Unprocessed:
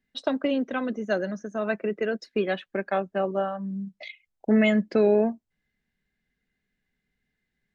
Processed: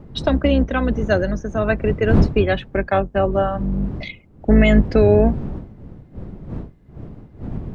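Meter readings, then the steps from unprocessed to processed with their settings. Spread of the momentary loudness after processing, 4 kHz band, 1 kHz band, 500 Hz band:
19 LU, +7.0 dB, +7.5 dB, +7.0 dB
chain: octave divider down 2 oct, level +1 dB; wind noise 180 Hz -31 dBFS; loudness maximiser +11 dB; trim -3.5 dB

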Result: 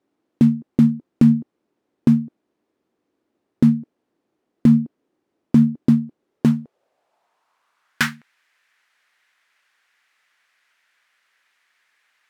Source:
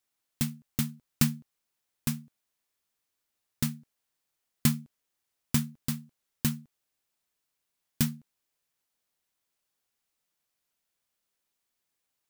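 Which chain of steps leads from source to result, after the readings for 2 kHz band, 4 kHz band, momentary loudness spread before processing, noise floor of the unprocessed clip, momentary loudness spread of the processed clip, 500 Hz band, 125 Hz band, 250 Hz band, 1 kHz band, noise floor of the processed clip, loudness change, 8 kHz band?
+13.5 dB, +2.5 dB, 12 LU, -83 dBFS, 8 LU, +17.0 dB, +10.5 dB, +17.0 dB, +10.5 dB, -77 dBFS, +13.0 dB, no reading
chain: band-pass sweep 310 Hz -> 1.8 kHz, 6.17–8.20 s; loudness maximiser +32 dB; trim -3.5 dB

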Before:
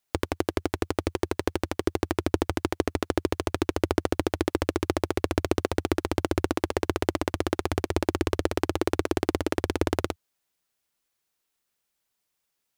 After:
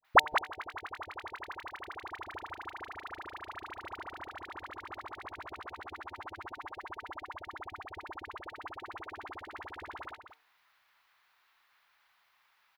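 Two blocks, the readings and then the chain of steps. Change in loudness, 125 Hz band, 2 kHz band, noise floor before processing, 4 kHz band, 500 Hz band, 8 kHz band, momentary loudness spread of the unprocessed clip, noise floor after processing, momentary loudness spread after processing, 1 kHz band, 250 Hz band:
-11.5 dB, -25.5 dB, -1.5 dB, -80 dBFS, -8.0 dB, -18.5 dB, -18.0 dB, 3 LU, -71 dBFS, 3 LU, -2.5 dB, -26.5 dB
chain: graphic EQ 250/500/1000/2000/4000/8000 Hz -5/-10/+6/+5/+8/-9 dB; waveshaping leveller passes 1; three-band isolator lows -15 dB, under 460 Hz, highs -14 dB, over 2.2 kHz; inverted gate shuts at -19 dBFS, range -31 dB; de-hum 151.1 Hz, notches 6; phase dispersion highs, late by 48 ms, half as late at 930 Hz; on a send: delay 188 ms -9 dB; on the sum: trim +16.5 dB

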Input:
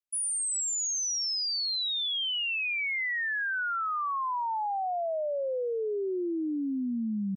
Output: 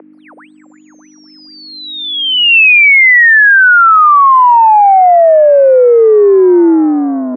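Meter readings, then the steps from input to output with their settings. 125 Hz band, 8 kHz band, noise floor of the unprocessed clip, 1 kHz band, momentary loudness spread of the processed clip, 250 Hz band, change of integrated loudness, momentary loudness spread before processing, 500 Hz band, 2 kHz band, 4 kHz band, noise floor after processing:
no reading, under -20 dB, -31 dBFS, +26.0 dB, 9 LU, +20.0 dB, +24.0 dB, 4 LU, +26.0 dB, +25.5 dB, +15.0 dB, -42 dBFS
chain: hum 50 Hz, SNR 18 dB; in parallel at -9 dB: saturation -35 dBFS, distortion -13 dB; on the sum: mistuned SSB +57 Hz 370–2200 Hz; loudness maximiser +35 dB; trim -1 dB

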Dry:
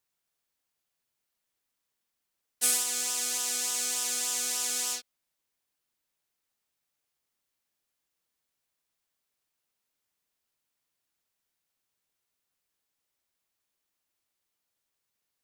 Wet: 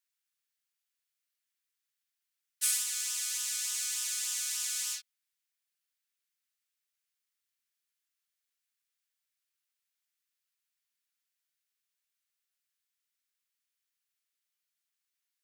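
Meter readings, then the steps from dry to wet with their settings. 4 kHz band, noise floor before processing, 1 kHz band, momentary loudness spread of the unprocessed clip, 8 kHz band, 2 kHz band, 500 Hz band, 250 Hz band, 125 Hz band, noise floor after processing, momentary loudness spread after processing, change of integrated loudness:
-3.5 dB, -84 dBFS, -13.5 dB, 4 LU, -3.5 dB, -4.0 dB, under -35 dB, under -40 dB, no reading, under -85 dBFS, 4 LU, -3.5 dB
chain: high-pass 1.4 kHz 24 dB/octave; trim -3.5 dB

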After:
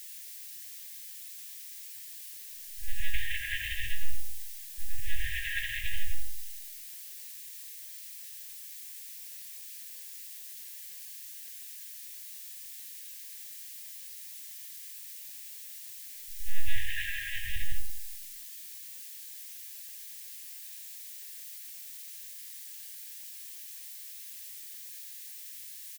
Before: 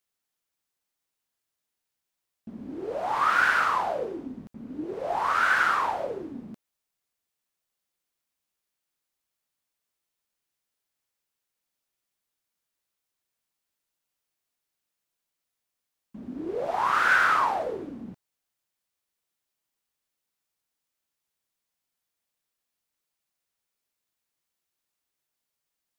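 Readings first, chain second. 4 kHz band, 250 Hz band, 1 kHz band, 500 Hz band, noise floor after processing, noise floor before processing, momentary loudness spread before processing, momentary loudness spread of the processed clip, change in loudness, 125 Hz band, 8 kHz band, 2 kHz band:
+1.0 dB, under -25 dB, under -40 dB, under -40 dB, -45 dBFS, -85 dBFS, 20 LU, 8 LU, -15.0 dB, +5.5 dB, +10.0 dB, -10.5 dB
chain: gate -33 dBFS, range -41 dB; monotone LPC vocoder at 8 kHz 280 Hz; dynamic bell 2.9 kHz, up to +3 dB, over -48 dBFS, Q 5; compressor with a negative ratio -28 dBFS, ratio -1; static phaser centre 370 Hz, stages 4; feedback comb 610 Hz, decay 0.2 s, harmonics all, mix 70%; small resonant body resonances 1.4/2.7 kHz, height 7 dB, ringing for 35 ms; added noise blue -59 dBFS; doubling 19 ms -11 dB; delay 129 ms -17.5 dB; FFT band-reject 180–1600 Hz; bit-crushed delay 85 ms, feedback 55%, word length 11-bit, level -13.5 dB; trim +13.5 dB

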